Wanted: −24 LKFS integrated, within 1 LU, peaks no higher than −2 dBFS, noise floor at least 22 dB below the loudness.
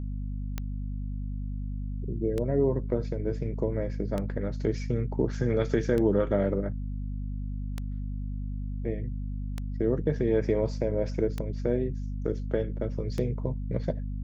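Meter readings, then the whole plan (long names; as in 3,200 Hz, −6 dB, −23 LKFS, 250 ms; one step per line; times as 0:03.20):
number of clicks 8; mains hum 50 Hz; hum harmonics up to 250 Hz; level of the hum −30 dBFS; integrated loudness −30.5 LKFS; sample peak −12.0 dBFS; target loudness −24.0 LKFS
→ click removal
hum removal 50 Hz, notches 5
level +6.5 dB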